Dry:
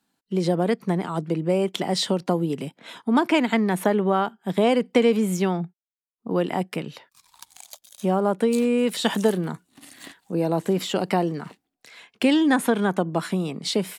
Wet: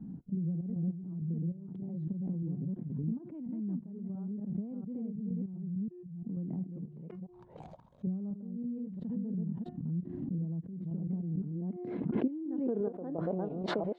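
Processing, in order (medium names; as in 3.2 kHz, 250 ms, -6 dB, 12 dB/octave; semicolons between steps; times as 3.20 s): chunks repeated in reverse 346 ms, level -3 dB; de-hum 357.7 Hz, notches 8; 6.85–8.07 s: resonant low shelf 360 Hz -9.5 dB, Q 1.5; compression 2.5:1, threshold -29 dBFS, peak gain reduction 11 dB; trance gate "xxxx.x..xx..xx." 99 bpm -12 dB; low-pass sweep 170 Hz -> 680 Hz, 11.19–13.58 s; swell ahead of each attack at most 34 dB/s; trim -7.5 dB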